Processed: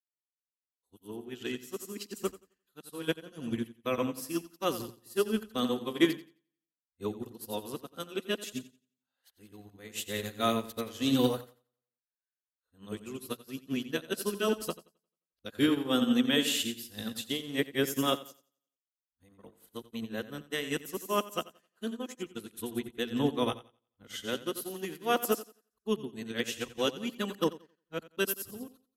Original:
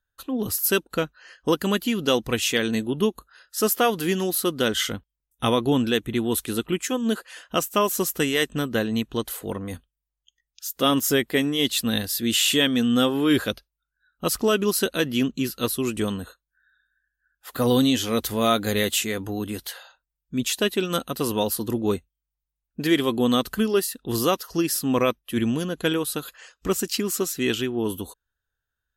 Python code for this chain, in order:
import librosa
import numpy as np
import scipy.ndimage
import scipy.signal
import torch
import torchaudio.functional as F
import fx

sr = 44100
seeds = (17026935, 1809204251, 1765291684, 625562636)

p1 = x[::-1].copy()
p2 = fx.hum_notches(p1, sr, base_hz=60, count=3)
p3 = p2 + fx.echo_feedback(p2, sr, ms=88, feedback_pct=55, wet_db=-7.5, dry=0)
p4 = fx.upward_expand(p3, sr, threshold_db=-41.0, expansion=2.5)
y = p4 * librosa.db_to_amplitude(-3.0)